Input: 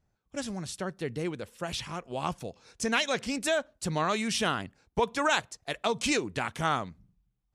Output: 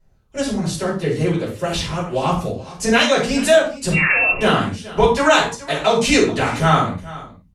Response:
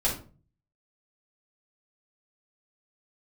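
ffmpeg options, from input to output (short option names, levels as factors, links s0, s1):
-filter_complex "[0:a]aecho=1:1:422:0.126,asettb=1/sr,asplit=3[s0][s1][s2];[s0]atrim=end=3.924[s3];[s1]atrim=start=3.92:end=4.41,asetpts=PTS-STARTPTS,afade=t=in:d=0.004:c=qsin,afade=t=out:st=0.486:d=0.004:c=qsin,lowpass=f=2500:t=q:w=0.5098,lowpass=f=2500:t=q:w=0.6013,lowpass=f=2500:t=q:w=0.9,lowpass=f=2500:t=q:w=2.563,afreqshift=-2900[s4];[s2]atrim=start=4.406[s5];[s3][s4]acrossfade=d=0.004:c1=hsin:c2=qsin[s6];[s6][s5]acrossfade=d=0.004:c1=qsin:c2=hsin[s7];[1:a]atrim=start_sample=2205,atrim=end_sample=6615,asetrate=36162,aresample=44100[s8];[s7][s8]afir=irnorm=-1:irlink=0,volume=1.19"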